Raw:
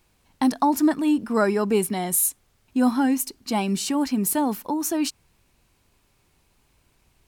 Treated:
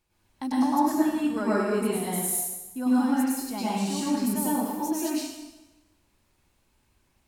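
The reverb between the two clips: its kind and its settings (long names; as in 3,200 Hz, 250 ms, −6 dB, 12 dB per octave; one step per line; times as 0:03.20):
dense smooth reverb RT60 1.1 s, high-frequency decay 0.9×, pre-delay 90 ms, DRR −8 dB
level −12.5 dB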